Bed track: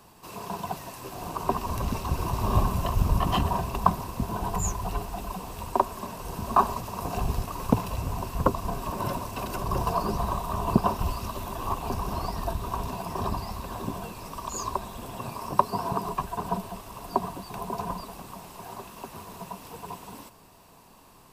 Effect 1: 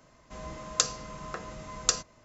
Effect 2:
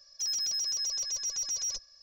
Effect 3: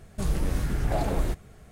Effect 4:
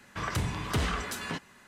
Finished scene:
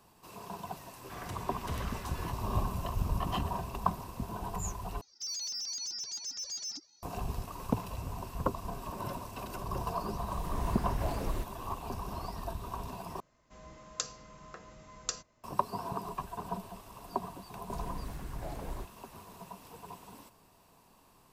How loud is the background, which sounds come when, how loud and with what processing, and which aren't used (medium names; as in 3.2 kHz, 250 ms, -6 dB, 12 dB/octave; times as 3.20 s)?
bed track -8.5 dB
0.94 s: add 4 -12.5 dB
5.01 s: replace with 2 -3.5 dB + ring modulator with a swept carrier 540 Hz, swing 60%, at 2.6 Hz
10.10 s: add 3 -8.5 dB + fade-in on the opening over 0.51 s
13.20 s: replace with 1 -10.5 dB
17.51 s: add 3 -14.5 dB